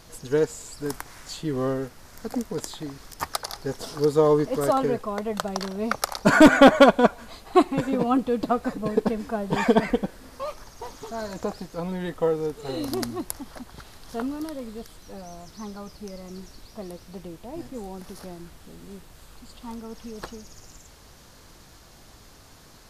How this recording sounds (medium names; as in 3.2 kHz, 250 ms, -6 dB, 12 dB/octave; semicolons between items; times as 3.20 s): noise floor -50 dBFS; spectral tilt -4.5 dB/octave